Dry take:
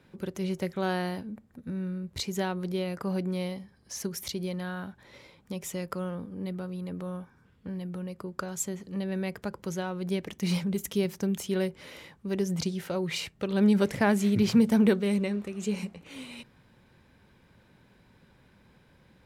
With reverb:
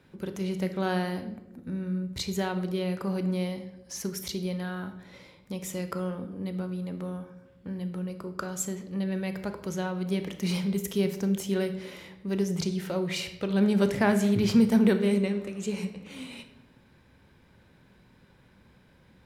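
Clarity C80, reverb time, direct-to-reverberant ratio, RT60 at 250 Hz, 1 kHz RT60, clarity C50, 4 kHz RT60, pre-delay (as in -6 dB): 13.5 dB, 0.95 s, 8.0 dB, 1.2 s, 0.80 s, 10.5 dB, 0.60 s, 15 ms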